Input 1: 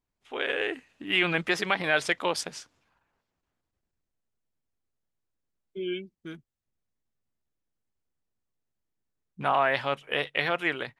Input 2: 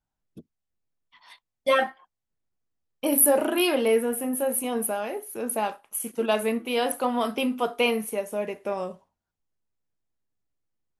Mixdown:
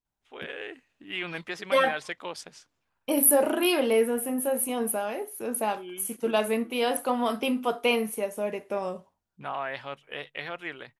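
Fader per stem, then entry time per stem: −9.0, −1.0 decibels; 0.00, 0.05 seconds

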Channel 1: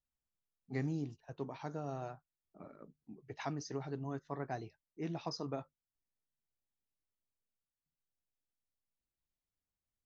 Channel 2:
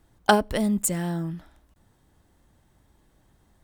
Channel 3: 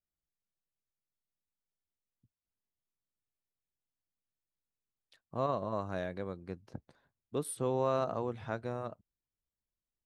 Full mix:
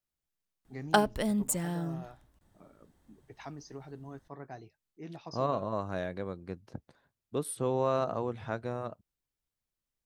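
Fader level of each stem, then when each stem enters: −4.5, −6.0, +2.0 decibels; 0.00, 0.65, 0.00 seconds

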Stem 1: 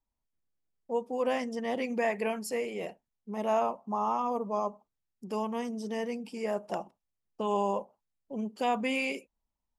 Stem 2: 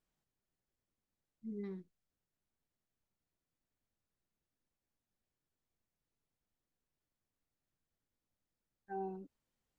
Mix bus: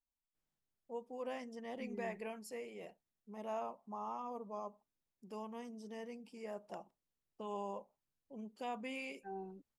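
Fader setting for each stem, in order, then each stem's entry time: −13.5, −4.5 decibels; 0.00, 0.35 seconds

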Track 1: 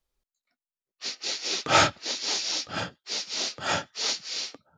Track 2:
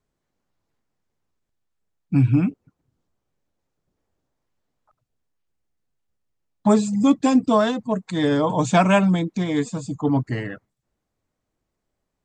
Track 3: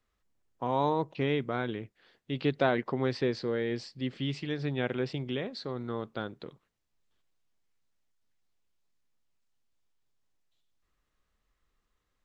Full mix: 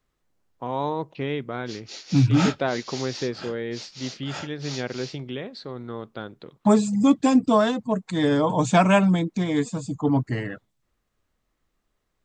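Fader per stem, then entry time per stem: −9.0, −1.0, +1.0 decibels; 0.65, 0.00, 0.00 seconds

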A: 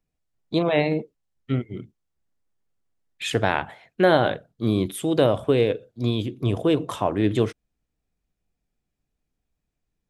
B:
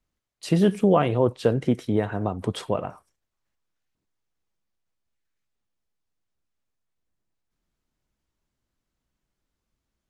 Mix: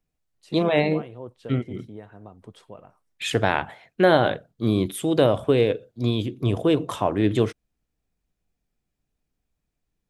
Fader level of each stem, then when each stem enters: +0.5, −17.5 decibels; 0.00, 0.00 seconds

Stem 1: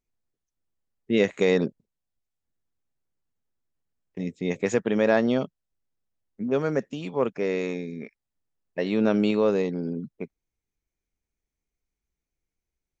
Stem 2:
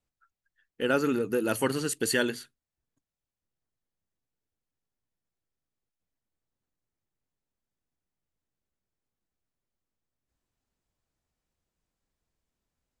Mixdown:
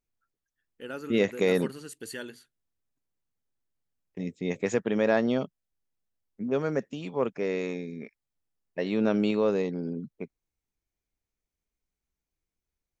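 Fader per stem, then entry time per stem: −3.0, −12.5 decibels; 0.00, 0.00 seconds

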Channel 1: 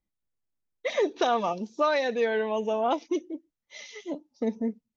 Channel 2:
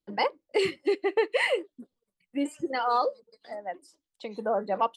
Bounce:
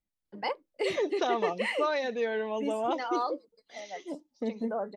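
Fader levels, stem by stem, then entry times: −4.5, −6.0 decibels; 0.00, 0.25 seconds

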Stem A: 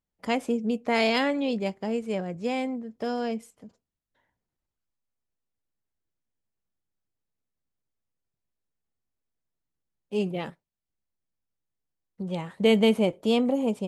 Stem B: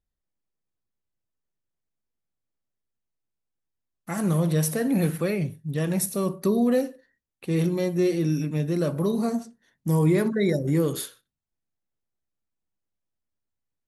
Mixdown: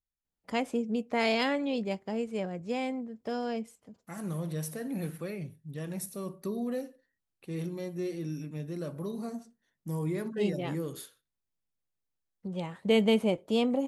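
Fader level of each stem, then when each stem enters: −4.0, −12.0 decibels; 0.25, 0.00 seconds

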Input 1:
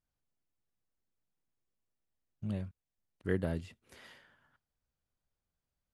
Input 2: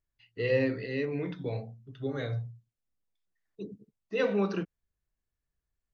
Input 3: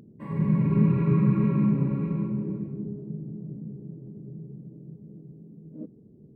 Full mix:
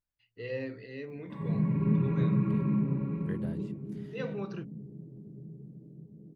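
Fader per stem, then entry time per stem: −9.0, −9.5, −5.5 decibels; 0.00, 0.00, 1.10 seconds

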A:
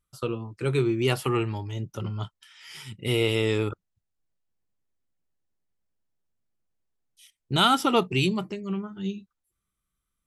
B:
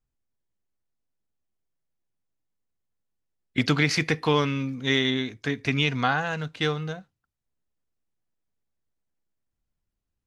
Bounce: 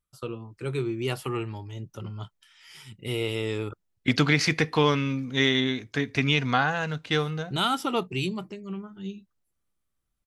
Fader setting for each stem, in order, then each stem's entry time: −5.0, +0.5 decibels; 0.00, 0.50 seconds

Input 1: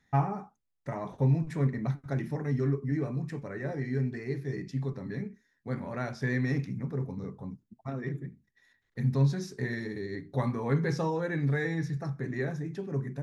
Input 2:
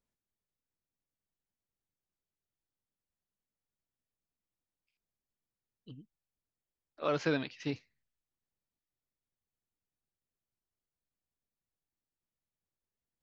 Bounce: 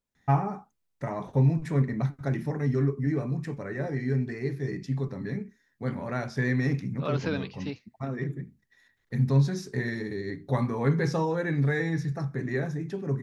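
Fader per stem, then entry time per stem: +3.0, 0.0 decibels; 0.15, 0.00 seconds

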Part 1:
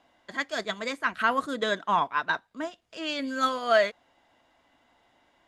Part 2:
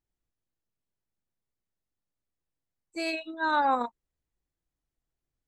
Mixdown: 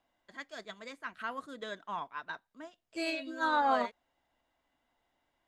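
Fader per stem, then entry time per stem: −14.0, −3.5 decibels; 0.00, 0.00 seconds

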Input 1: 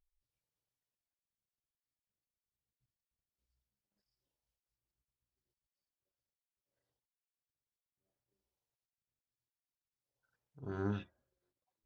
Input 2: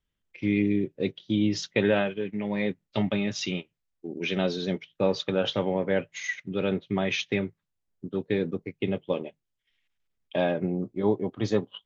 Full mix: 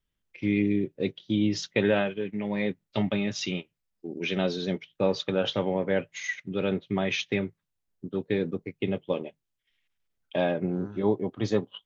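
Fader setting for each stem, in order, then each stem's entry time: −7.0, −0.5 decibels; 0.00, 0.00 seconds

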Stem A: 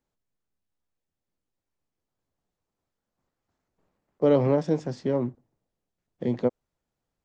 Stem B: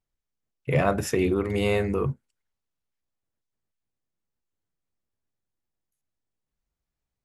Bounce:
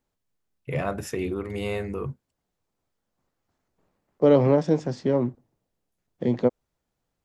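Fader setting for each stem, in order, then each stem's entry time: +3.0, −5.5 decibels; 0.00, 0.00 seconds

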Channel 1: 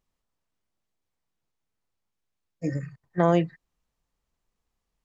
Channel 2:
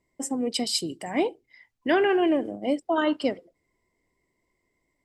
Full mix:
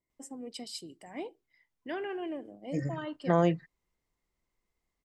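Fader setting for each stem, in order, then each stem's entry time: −4.0, −15.0 decibels; 0.10, 0.00 seconds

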